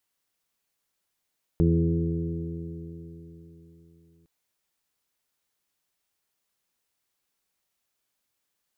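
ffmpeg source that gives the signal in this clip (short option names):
-f lavfi -i "aevalsrc='0.075*pow(10,-3*t/3.82)*sin(2*PI*82.17*t)+0.106*pow(10,-3*t/3.82)*sin(2*PI*164.79*t)+0.0237*pow(10,-3*t/3.82)*sin(2*PI*248.29*t)+0.0631*pow(10,-3*t/3.82)*sin(2*PI*333.1*t)+0.0355*pow(10,-3*t/3.82)*sin(2*PI*419.63*t)+0.0075*pow(10,-3*t/3.82)*sin(2*PI*508.31*t)':d=2.66:s=44100"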